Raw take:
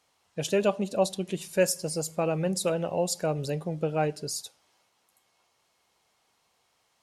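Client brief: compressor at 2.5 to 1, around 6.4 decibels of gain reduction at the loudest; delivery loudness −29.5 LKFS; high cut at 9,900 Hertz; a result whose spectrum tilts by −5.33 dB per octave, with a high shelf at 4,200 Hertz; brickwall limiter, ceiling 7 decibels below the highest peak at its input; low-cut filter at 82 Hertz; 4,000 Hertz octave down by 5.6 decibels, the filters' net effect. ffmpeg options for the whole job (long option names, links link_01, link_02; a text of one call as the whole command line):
ffmpeg -i in.wav -af "highpass=82,lowpass=9900,equalizer=frequency=4000:width_type=o:gain=-3,highshelf=frequency=4200:gain=-6.5,acompressor=threshold=-28dB:ratio=2.5,volume=6dB,alimiter=limit=-18dB:level=0:latency=1" out.wav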